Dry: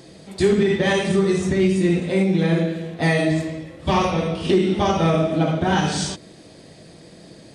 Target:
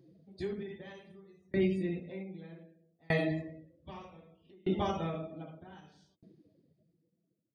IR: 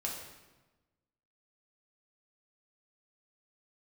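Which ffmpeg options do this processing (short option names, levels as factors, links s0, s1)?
-af "afftdn=nr=23:nf=-35,equalizer=f=7900:t=o:w=0.35:g=-14.5,aeval=exprs='val(0)*pow(10,-36*if(lt(mod(0.64*n/s,1),2*abs(0.64)/1000),1-mod(0.64*n/s,1)/(2*abs(0.64)/1000),(mod(0.64*n/s,1)-2*abs(0.64)/1000)/(1-2*abs(0.64)/1000))/20)':c=same,volume=0.376"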